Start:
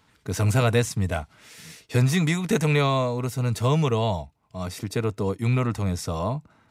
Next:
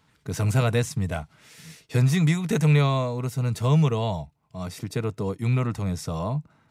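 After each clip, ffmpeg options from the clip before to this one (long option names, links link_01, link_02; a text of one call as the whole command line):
ffmpeg -i in.wav -af "equalizer=frequency=150:width=3.6:gain=8,volume=-3dB" out.wav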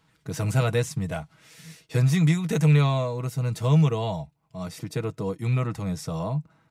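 ffmpeg -i in.wav -af "aecho=1:1:6.2:0.4,volume=-2dB" out.wav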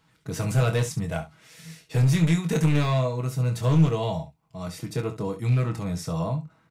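ffmpeg -i in.wav -filter_complex "[0:a]aeval=exprs='clip(val(0),-1,0.106)':channel_layout=same,asplit=2[link_01][link_02];[link_02]aecho=0:1:24|68:0.447|0.224[link_03];[link_01][link_03]amix=inputs=2:normalize=0" out.wav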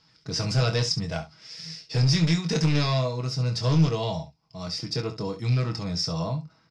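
ffmpeg -i in.wav -af "lowpass=frequency=5100:width_type=q:width=15,volume=-1.5dB" out.wav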